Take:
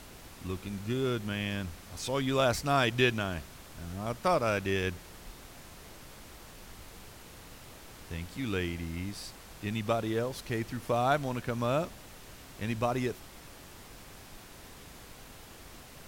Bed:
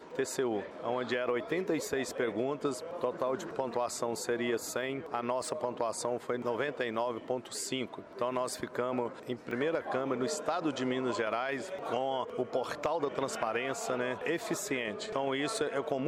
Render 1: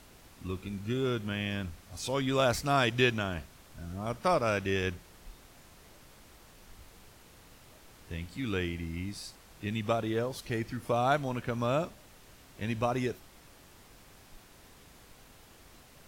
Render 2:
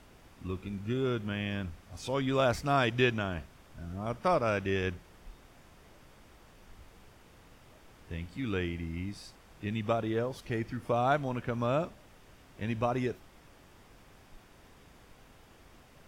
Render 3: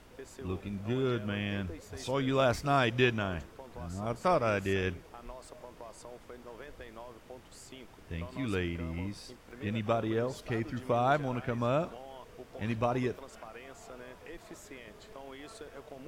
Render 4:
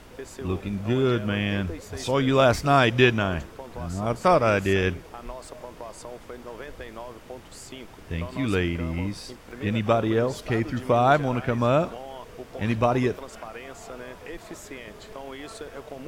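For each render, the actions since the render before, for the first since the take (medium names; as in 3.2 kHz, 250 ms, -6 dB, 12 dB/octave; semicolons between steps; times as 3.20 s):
noise print and reduce 6 dB
treble shelf 4.7 kHz -10 dB; band-stop 4.1 kHz, Q 15
add bed -15 dB
trim +8.5 dB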